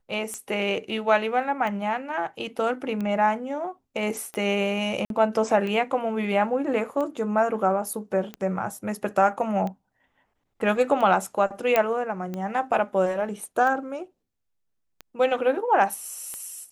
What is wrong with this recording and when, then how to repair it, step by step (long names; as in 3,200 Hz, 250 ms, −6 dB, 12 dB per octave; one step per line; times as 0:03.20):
scratch tick 45 rpm −20 dBFS
0:05.05–0:05.10: drop-out 52 ms
0:11.76: click −7 dBFS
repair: click removal
repair the gap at 0:05.05, 52 ms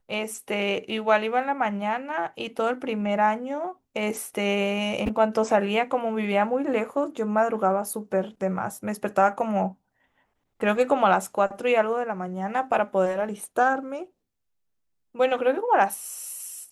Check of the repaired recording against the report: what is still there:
0:11.76: click